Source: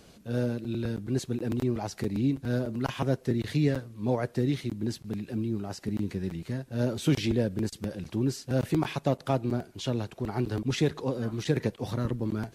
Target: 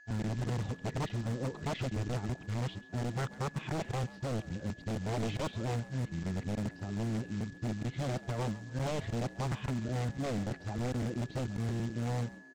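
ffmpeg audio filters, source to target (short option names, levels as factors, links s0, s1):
-filter_complex "[0:a]areverse,lowpass=f=3500:w=0.5412,lowpass=f=3500:w=1.3066,agate=range=0.00178:threshold=0.00708:ratio=16:detection=peak,lowshelf=f=200:g=4,acrossover=split=230[s0][s1];[s0]acontrast=63[s2];[s2][s1]amix=inputs=2:normalize=0,aeval=exprs='val(0)+0.00501*sin(2*PI*1700*n/s)':c=same,aresample=16000,acrusher=bits=4:mode=log:mix=0:aa=0.000001,aresample=44100,aeval=exprs='0.106*(abs(mod(val(0)/0.106+3,4)-2)-1)':c=same,asplit=4[s3][s4][s5][s6];[s4]adelay=136,afreqshift=72,volume=0.119[s7];[s5]adelay=272,afreqshift=144,volume=0.0394[s8];[s6]adelay=408,afreqshift=216,volume=0.0129[s9];[s3][s7][s8][s9]amix=inputs=4:normalize=0,volume=0.376"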